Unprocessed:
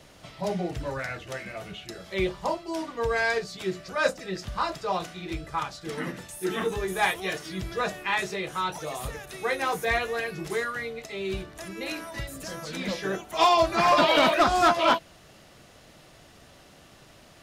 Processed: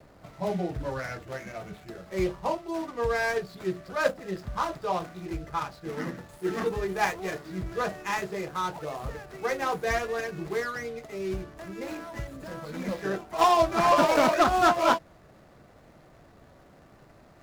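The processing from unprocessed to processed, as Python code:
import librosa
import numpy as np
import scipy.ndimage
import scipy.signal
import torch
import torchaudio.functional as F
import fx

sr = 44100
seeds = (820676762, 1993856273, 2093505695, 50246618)

y = scipy.ndimage.median_filter(x, 15, mode='constant')
y = fx.vibrato(y, sr, rate_hz=0.77, depth_cents=23.0)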